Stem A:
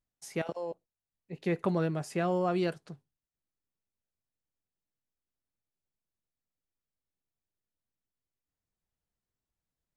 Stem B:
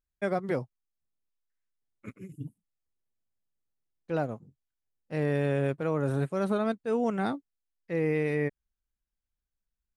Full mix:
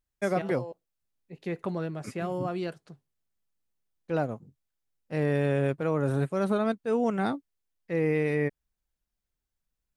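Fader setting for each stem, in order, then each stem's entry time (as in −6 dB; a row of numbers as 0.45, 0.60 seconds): −3.0, +1.5 decibels; 0.00, 0.00 seconds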